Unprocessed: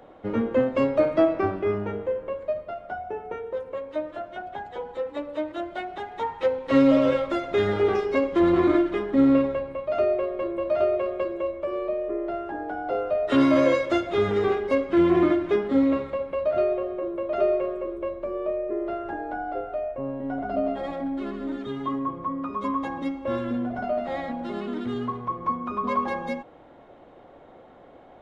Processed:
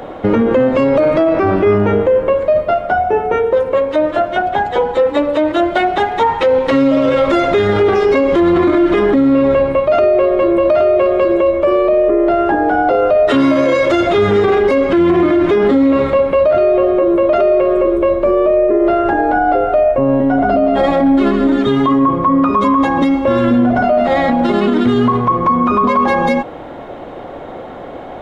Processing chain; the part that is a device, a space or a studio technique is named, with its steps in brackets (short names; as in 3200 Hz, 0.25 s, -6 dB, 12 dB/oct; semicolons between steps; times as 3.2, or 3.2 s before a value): loud club master (compressor 3:1, threshold -22 dBFS, peak gain reduction 6.5 dB; hard clip -15 dBFS, distortion -46 dB; maximiser +24.5 dB); gain -4 dB